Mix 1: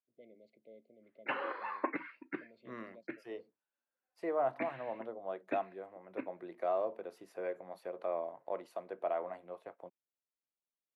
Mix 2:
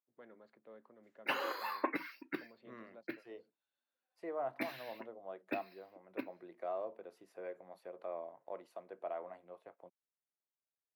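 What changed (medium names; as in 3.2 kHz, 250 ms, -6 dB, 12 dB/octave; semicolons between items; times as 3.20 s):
first voice: remove brick-wall FIR band-stop 710–2000 Hz; second voice -6.5 dB; background: remove low-pass 2.5 kHz 24 dB/octave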